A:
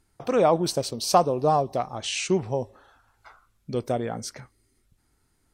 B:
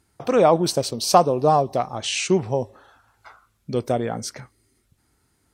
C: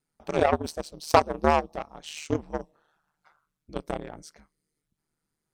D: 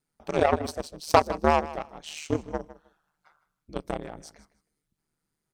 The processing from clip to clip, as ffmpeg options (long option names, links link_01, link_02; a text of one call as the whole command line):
ffmpeg -i in.wav -af "highpass=57,volume=4dB" out.wav
ffmpeg -i in.wav -af "aeval=exprs='val(0)*sin(2*PI*76*n/s)':channel_layout=same,aeval=exprs='0.891*(cos(1*acos(clip(val(0)/0.891,-1,1)))-cos(1*PI/2))+0.1*(cos(7*acos(clip(val(0)/0.891,-1,1)))-cos(7*PI/2))':channel_layout=same" out.wav
ffmpeg -i in.wav -af "aecho=1:1:156|312:0.15|0.0269" out.wav